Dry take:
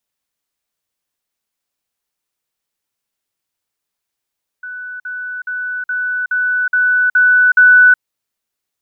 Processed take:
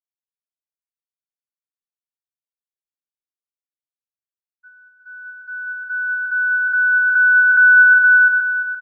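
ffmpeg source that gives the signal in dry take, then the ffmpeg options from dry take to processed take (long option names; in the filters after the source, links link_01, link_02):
-f lavfi -i "aevalsrc='pow(10,(-25+3*floor(t/0.42))/20)*sin(2*PI*1490*t)*clip(min(mod(t,0.42),0.37-mod(t,0.42))/0.005,0,1)':duration=3.36:sample_rate=44100"
-filter_complex "[0:a]asplit=2[link_01][link_02];[link_02]aecho=0:1:48|250|467:0.188|0.168|0.531[link_03];[link_01][link_03]amix=inputs=2:normalize=0,agate=range=-33dB:threshold=-19dB:ratio=3:detection=peak,asplit=2[link_04][link_05];[link_05]adelay=344,lowpass=frequency=1300:poles=1,volume=-5dB,asplit=2[link_06][link_07];[link_07]adelay=344,lowpass=frequency=1300:poles=1,volume=0.46,asplit=2[link_08][link_09];[link_09]adelay=344,lowpass=frequency=1300:poles=1,volume=0.46,asplit=2[link_10][link_11];[link_11]adelay=344,lowpass=frequency=1300:poles=1,volume=0.46,asplit=2[link_12][link_13];[link_13]adelay=344,lowpass=frequency=1300:poles=1,volume=0.46,asplit=2[link_14][link_15];[link_15]adelay=344,lowpass=frequency=1300:poles=1,volume=0.46[link_16];[link_06][link_08][link_10][link_12][link_14][link_16]amix=inputs=6:normalize=0[link_17];[link_04][link_17]amix=inputs=2:normalize=0"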